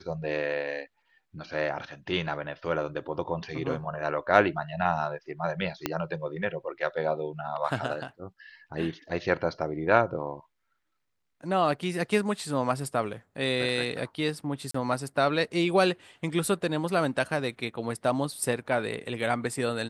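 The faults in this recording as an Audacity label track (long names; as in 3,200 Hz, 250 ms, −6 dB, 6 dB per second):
5.860000	5.860000	click −11 dBFS
14.710000	14.740000	drop-out 34 ms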